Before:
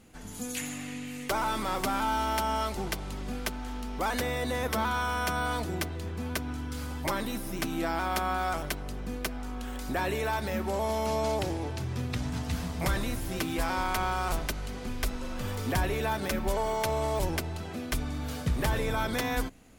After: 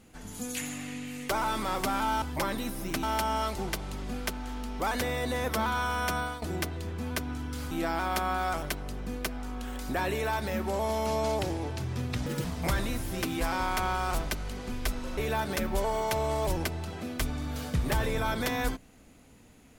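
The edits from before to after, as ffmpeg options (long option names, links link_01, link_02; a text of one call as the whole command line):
ffmpeg -i in.wav -filter_complex "[0:a]asplit=8[link_01][link_02][link_03][link_04][link_05][link_06][link_07][link_08];[link_01]atrim=end=2.222[link_09];[link_02]atrim=start=6.898:end=7.712[link_10];[link_03]atrim=start=2.218:end=5.61,asetpts=PTS-STARTPTS,afade=type=out:start_time=3.132:duration=0.26:silence=0.199526[link_11];[link_04]atrim=start=5.61:end=6.902,asetpts=PTS-STARTPTS,afade=type=in:duration=0.004:curve=hsin:silence=0.199526[link_12];[link_05]atrim=start=7.708:end=12.264[link_13];[link_06]atrim=start=12.26:end=12.62,asetpts=PTS-STARTPTS,asetrate=85995,aresample=44100[link_14];[link_07]atrim=start=12.616:end=15.352[link_15];[link_08]atrim=start=15.898[link_16];[link_09][link_10]acrossfade=duration=0.004:curve1=hsin:curve2=hsin[link_17];[link_11][link_12]concat=n=2:v=0:a=1[link_18];[link_17][link_18]acrossfade=duration=0.004:curve1=hsin:curve2=hsin[link_19];[link_19][link_13]acrossfade=duration=0.004:curve1=hsin:curve2=hsin[link_20];[link_20][link_14]acrossfade=duration=0.004:curve1=hsin:curve2=hsin[link_21];[link_21][link_15]acrossfade=duration=0.004:curve1=hsin:curve2=hsin[link_22];[link_22][link_16]acrossfade=duration=0.004:curve1=hsin:curve2=hsin" out.wav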